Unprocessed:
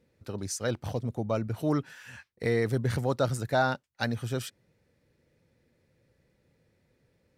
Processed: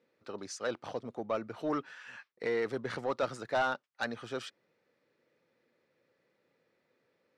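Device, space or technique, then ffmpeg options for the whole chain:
intercom: -af "highpass=330,lowpass=4.6k,equalizer=f=1.2k:t=o:w=0.38:g=5.5,asoftclip=type=tanh:threshold=-21.5dB,volume=-1.5dB"

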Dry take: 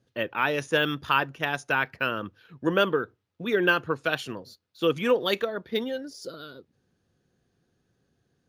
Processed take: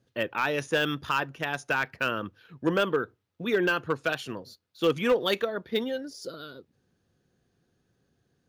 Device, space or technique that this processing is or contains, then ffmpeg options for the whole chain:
limiter into clipper: -af "alimiter=limit=-12.5dB:level=0:latency=1:release=212,asoftclip=type=hard:threshold=-16.5dB"

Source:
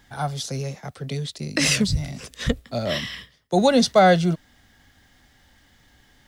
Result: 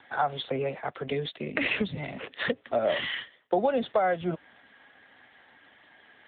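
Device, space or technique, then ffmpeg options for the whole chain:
voicemail: -filter_complex "[0:a]asplit=3[a][b][c];[a]afade=t=out:st=2.22:d=0.02[d];[b]highpass=f=72:w=0.5412,highpass=f=72:w=1.3066,afade=t=in:st=2.22:d=0.02,afade=t=out:st=3.78:d=0.02[e];[c]afade=t=in:st=3.78:d=0.02[f];[d][e][f]amix=inputs=3:normalize=0,highpass=370,lowpass=3.1k,acompressor=threshold=-28dB:ratio=12,volume=7dB" -ar 8000 -c:a libopencore_amrnb -b:a 7950

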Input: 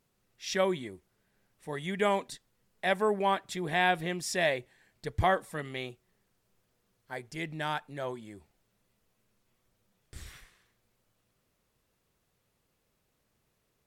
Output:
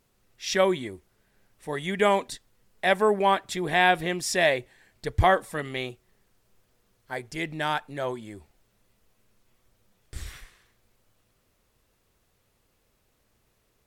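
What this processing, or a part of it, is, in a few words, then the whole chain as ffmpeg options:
low shelf boost with a cut just above: -af "lowshelf=f=67:g=6,equalizer=f=160:t=o:w=0.66:g=-4.5,volume=6dB"

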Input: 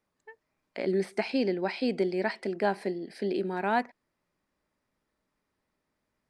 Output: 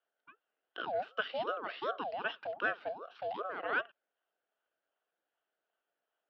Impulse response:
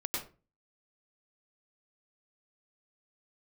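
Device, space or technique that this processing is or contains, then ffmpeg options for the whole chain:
voice changer toy: -af "aeval=exprs='val(0)*sin(2*PI*610*n/s+610*0.55/2.6*sin(2*PI*2.6*n/s))':c=same,highpass=430,equalizer=f=440:t=q:w=4:g=4,equalizer=f=670:t=q:w=4:g=6,equalizer=f=1k:t=q:w=4:g=-7,equalizer=f=1.5k:t=q:w=4:g=8,equalizer=f=2.2k:t=q:w=4:g=-6,equalizer=f=3.1k:t=q:w=4:g=7,lowpass=f=3.6k:w=0.5412,lowpass=f=3.6k:w=1.3066,volume=-5.5dB"

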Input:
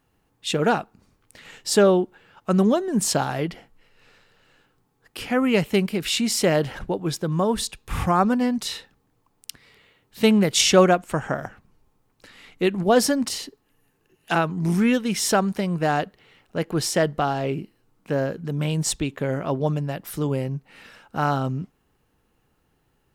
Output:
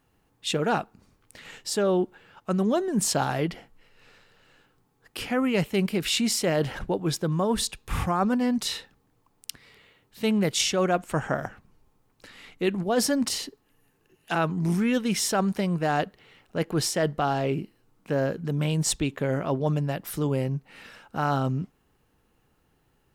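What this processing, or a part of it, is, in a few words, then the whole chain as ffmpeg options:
compression on the reversed sound: -af "areverse,acompressor=threshold=-20dB:ratio=10,areverse"

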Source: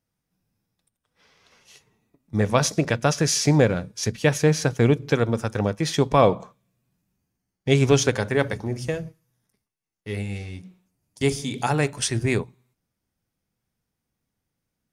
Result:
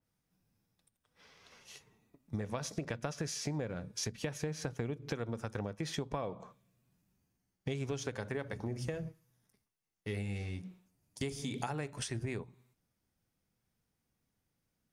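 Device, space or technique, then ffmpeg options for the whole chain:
serial compression, peaks first: -af "acompressor=threshold=-26dB:ratio=6,acompressor=threshold=-36dB:ratio=2,adynamicequalizer=threshold=0.00178:dfrequency=2700:dqfactor=0.7:tfrequency=2700:tqfactor=0.7:attack=5:release=100:ratio=0.375:range=2:mode=cutabove:tftype=highshelf,volume=-2dB"

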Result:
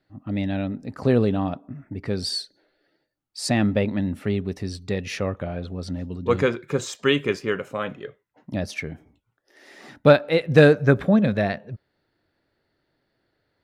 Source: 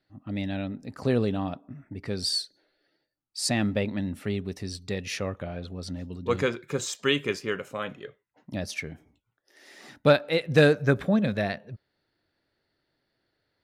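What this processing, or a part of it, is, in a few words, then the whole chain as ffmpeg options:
behind a face mask: -af "highshelf=f=2.9k:g=-8,volume=5.5dB"

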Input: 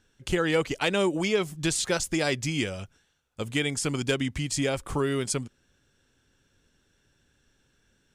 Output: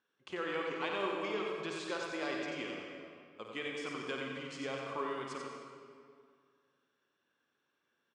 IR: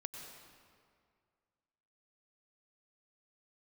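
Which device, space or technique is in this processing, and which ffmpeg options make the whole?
station announcement: -filter_complex "[0:a]highpass=330,lowpass=3.6k,equalizer=f=1.1k:t=o:w=0.28:g=11,aecho=1:1:52.48|90.38:0.398|0.562[a];[1:a]atrim=start_sample=2205[b];[a][b]afir=irnorm=-1:irlink=0,volume=-8.5dB"

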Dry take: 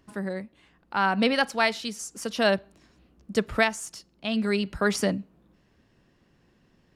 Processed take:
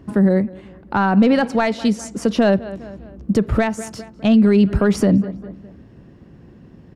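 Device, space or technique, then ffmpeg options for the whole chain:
mastering chain: -filter_complex "[0:a]asettb=1/sr,asplit=3[a][b][c];[a]atrim=end=1.264[d];[b]atrim=start=1.26:end=2.52,asetpts=PTS-STARTPTS,afade=t=in:d=0.004:c=qsin,afade=t=out:st=1.256:d=0.004:c=qsin,lowpass=10k[e];[c]atrim=start=2.516[f];[d][e]acrossfade=d=0.004:c1=hsin:c2=qsin[g];[g][f]acrossfade=d=0.004:c1=qsin:c2=hsin,highpass=49,equalizer=f=1.7k:t=o:w=1.7:g=2.5,asplit=2[h][i];[i]adelay=203,lowpass=f=3.4k:p=1,volume=-23dB,asplit=2[j][k];[k]adelay=203,lowpass=f=3.4k:p=1,volume=0.46,asplit=2[l][m];[m]adelay=203,lowpass=f=3.4k:p=1,volume=0.46[n];[h][j][l][n]amix=inputs=4:normalize=0,acompressor=threshold=-26dB:ratio=2.5,asoftclip=type=tanh:threshold=-16dB,tiltshelf=f=760:g=9.5,alimiter=level_in=18dB:limit=-1dB:release=50:level=0:latency=1,volume=-5.5dB"

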